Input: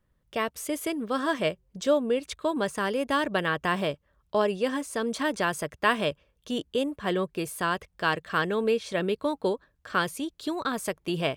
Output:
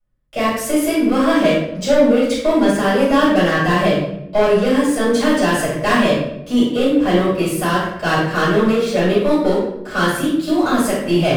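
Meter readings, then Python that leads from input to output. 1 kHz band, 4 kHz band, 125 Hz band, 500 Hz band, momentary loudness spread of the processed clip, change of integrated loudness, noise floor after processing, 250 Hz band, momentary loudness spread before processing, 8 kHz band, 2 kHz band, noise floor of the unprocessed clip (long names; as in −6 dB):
+9.5 dB, +9.5 dB, +15.0 dB, +12.0 dB, 5 LU, +12.0 dB, −32 dBFS, +15.5 dB, 6 LU, +10.5 dB, +9.0 dB, −71 dBFS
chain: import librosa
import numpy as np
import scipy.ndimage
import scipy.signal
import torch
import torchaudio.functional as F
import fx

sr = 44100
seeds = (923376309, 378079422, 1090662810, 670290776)

y = fx.leveller(x, sr, passes=3)
y = fx.room_shoebox(y, sr, seeds[0], volume_m3=210.0, walls='mixed', distance_m=6.6)
y = y * 10.0 ** (-14.0 / 20.0)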